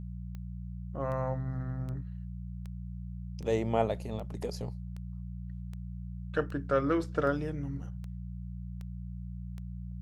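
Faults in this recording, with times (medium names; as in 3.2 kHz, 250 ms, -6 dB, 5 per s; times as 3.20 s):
hum 60 Hz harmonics 3 -40 dBFS
tick 78 rpm -31 dBFS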